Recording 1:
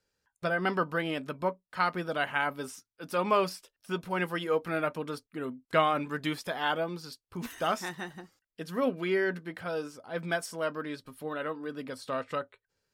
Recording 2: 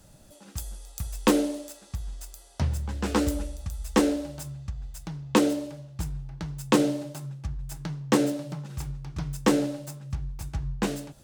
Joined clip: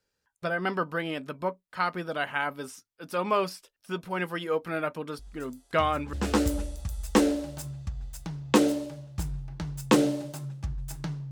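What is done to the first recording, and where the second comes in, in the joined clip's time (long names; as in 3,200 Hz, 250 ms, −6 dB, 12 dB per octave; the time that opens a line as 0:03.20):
recording 1
0:05.19: mix in recording 2 from 0:02.00 0.94 s −11.5 dB
0:06.13: continue with recording 2 from 0:02.94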